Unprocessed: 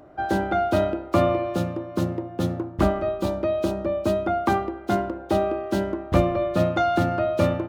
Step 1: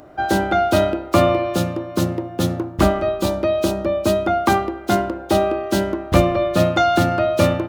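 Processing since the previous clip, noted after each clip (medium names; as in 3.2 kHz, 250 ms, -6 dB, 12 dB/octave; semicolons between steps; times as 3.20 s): treble shelf 2.8 kHz +9.5 dB; trim +4.5 dB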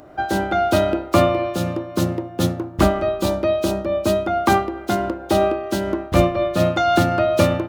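random flutter of the level, depth 55%; trim +2 dB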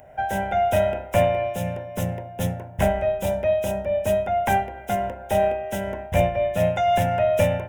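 single-diode clipper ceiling -5.5 dBFS; static phaser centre 1.2 kHz, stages 6; de-hum 61.01 Hz, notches 29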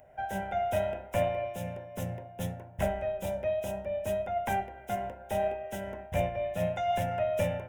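flange 0.71 Hz, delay 1.4 ms, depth 7.2 ms, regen +84%; trim -5 dB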